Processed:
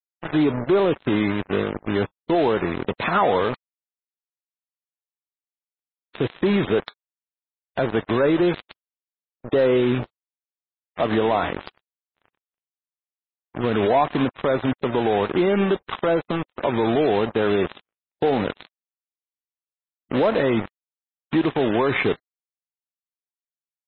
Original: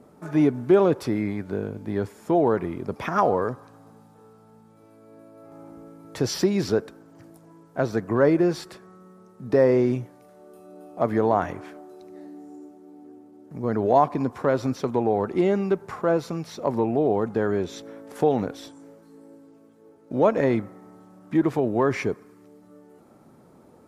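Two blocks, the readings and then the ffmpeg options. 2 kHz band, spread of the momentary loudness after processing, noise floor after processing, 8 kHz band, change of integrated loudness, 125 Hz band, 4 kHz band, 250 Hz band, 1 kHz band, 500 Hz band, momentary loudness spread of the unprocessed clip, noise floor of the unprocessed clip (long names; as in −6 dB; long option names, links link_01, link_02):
+7.0 dB, 9 LU, below −85 dBFS, below −35 dB, +1.5 dB, +1.0 dB, +7.5 dB, +1.5 dB, +2.0 dB, +1.5 dB, 21 LU, −53 dBFS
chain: -af "aresample=8000,acrusher=bits=4:mix=0:aa=0.5,aresample=44100,asoftclip=type=tanh:threshold=-11dB,alimiter=limit=-18dB:level=0:latency=1:release=56,agate=range=-44dB:threshold=-48dB:ratio=16:detection=peak,areverse,acompressor=mode=upward:threshold=-33dB:ratio=2.5,areverse,lowshelf=frequency=330:gain=-4.5,volume=8.5dB" -ar 16000 -c:a libmp3lame -b:a 16k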